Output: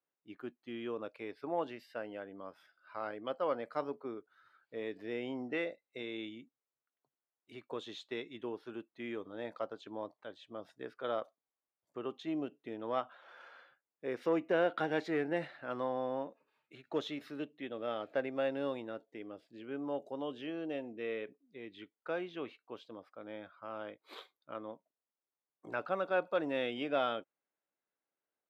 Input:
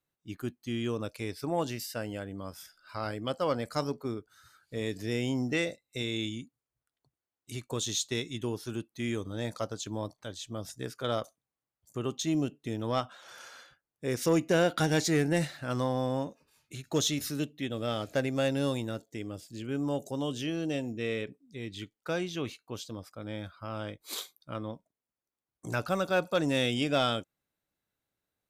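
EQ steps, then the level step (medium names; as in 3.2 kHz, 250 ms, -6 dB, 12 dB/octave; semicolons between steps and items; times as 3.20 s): high-pass 380 Hz 12 dB/octave; distance through air 470 m; -1.5 dB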